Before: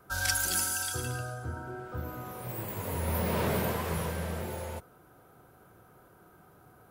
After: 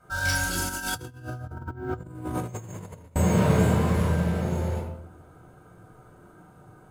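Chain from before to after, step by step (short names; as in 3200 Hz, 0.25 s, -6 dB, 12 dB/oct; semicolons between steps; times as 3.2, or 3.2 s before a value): reverb RT60 0.75 s, pre-delay 12 ms, DRR -4.5 dB; dynamic EQ 150 Hz, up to +5 dB, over -34 dBFS, Q 0.8; careless resampling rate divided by 2×, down none, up hold; high shelf 11000 Hz -11.5 dB; 0.69–3.16 negative-ratio compressor -30 dBFS, ratio -0.5; gain -4 dB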